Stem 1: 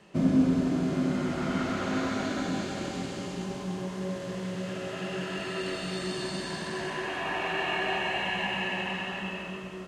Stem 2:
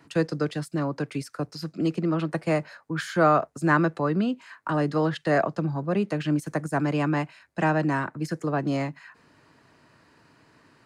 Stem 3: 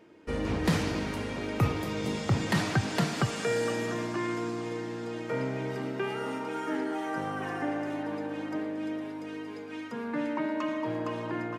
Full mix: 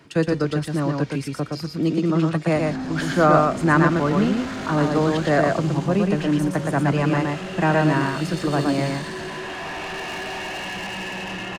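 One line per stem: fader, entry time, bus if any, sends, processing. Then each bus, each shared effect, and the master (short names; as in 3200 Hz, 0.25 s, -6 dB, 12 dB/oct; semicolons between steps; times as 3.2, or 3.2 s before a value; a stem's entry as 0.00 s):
-0.5 dB, 2.40 s, no send, no echo send, AGC gain up to 6.5 dB; soft clip -27.5 dBFS, distortion -8 dB
+2.5 dB, 0.00 s, no send, echo send -3 dB, dry
-2.5 dB, 0.00 s, no send, no echo send, compressor, threshold -33 dBFS, peak gain reduction 12.5 dB; bell 4700 Hz +13 dB 2.5 oct; auto duck -10 dB, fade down 0.50 s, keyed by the second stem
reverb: off
echo: echo 0.118 s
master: low shelf 120 Hz +5 dB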